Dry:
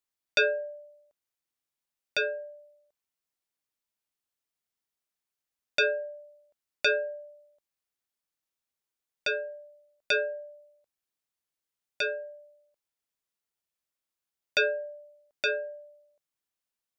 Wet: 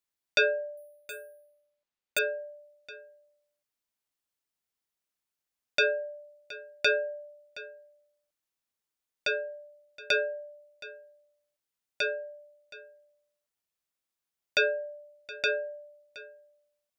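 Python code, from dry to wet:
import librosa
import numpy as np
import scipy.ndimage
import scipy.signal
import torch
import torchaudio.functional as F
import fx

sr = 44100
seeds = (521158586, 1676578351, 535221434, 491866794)

y = x + 10.0 ** (-18.0 / 20.0) * np.pad(x, (int(720 * sr / 1000.0), 0))[:len(x)]
y = fx.resample_bad(y, sr, factor=4, down='filtered', up='hold', at=(0.77, 2.19))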